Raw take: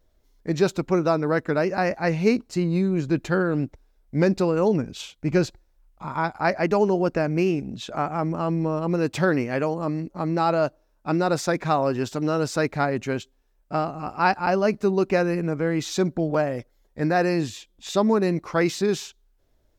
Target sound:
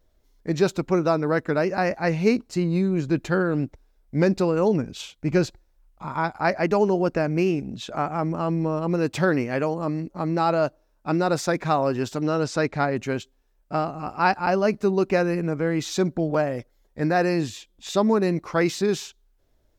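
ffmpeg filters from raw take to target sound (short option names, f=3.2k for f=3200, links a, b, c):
-filter_complex "[0:a]asettb=1/sr,asplit=3[a][b][c];[a]atrim=end=12.214[d];[b]atrim=start=12.21:end=12.96,asetpts=PTS-STARTPTS,afade=t=in:d=0.004:c=qsin,afade=t=out:st=0.746:d=0.004:c=qsin,lowpass=7.5k[e];[c]atrim=start=12.956[f];[d][e]acrossfade=d=0.004:c1=hsin:c2=qsin[g];[g][f]acrossfade=d=0.004:c1=qsin:c2=hsin"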